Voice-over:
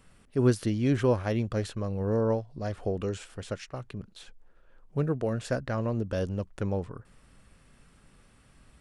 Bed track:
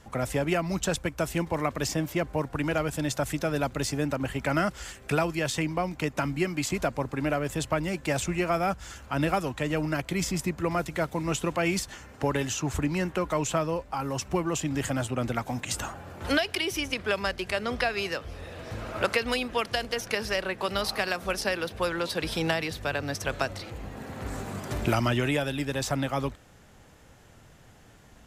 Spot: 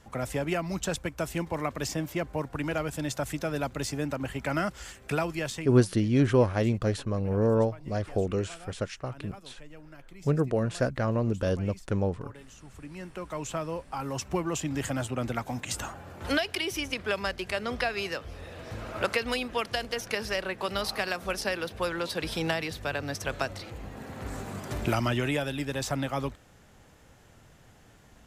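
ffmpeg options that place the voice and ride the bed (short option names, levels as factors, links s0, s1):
-filter_complex "[0:a]adelay=5300,volume=1.33[s0];[1:a]volume=6.68,afade=t=out:st=5.4:d=0.4:silence=0.11885,afade=t=in:st=12.71:d=1.48:silence=0.105925[s1];[s0][s1]amix=inputs=2:normalize=0"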